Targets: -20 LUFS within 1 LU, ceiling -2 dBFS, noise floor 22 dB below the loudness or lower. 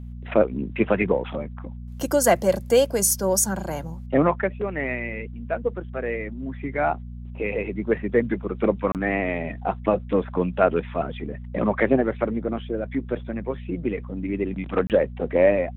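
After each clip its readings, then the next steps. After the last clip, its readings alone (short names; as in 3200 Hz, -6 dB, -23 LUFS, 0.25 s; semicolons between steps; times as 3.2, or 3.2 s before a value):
dropouts 2; longest dropout 28 ms; hum 60 Hz; harmonics up to 240 Hz; hum level -34 dBFS; loudness -24.5 LUFS; peak -4.5 dBFS; loudness target -20.0 LUFS
-> interpolate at 8.92/14.87, 28 ms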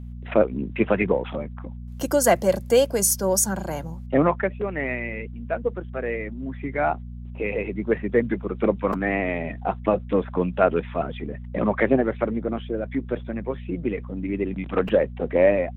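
dropouts 0; hum 60 Hz; harmonics up to 240 Hz; hum level -34 dBFS
-> de-hum 60 Hz, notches 4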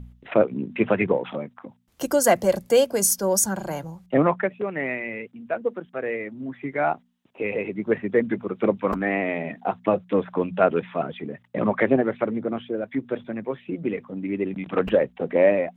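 hum none; loudness -24.5 LUFS; peak -5.0 dBFS; loudness target -20.0 LUFS
-> gain +4.5 dB; limiter -2 dBFS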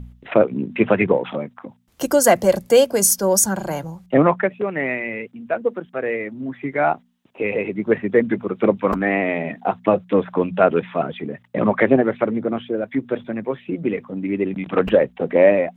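loudness -20.0 LUFS; peak -2.0 dBFS; noise floor -56 dBFS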